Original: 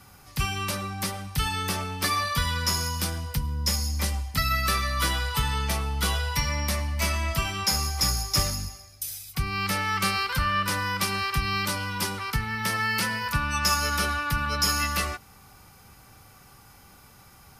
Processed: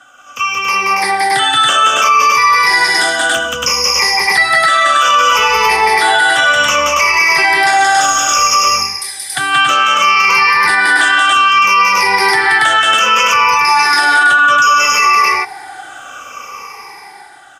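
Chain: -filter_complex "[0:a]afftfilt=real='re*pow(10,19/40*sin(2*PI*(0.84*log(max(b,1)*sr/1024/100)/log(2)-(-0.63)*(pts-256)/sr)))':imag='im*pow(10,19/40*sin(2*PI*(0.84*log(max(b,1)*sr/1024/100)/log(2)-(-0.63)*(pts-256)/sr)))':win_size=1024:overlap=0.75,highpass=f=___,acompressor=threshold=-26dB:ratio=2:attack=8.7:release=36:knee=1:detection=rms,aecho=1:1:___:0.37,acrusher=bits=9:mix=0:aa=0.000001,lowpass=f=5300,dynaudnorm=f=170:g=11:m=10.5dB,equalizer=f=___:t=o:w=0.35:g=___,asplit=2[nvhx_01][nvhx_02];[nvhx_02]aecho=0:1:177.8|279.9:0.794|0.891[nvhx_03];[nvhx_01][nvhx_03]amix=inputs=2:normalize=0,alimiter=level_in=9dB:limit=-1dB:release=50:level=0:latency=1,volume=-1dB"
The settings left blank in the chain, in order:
630, 2.6, 4100, -13.5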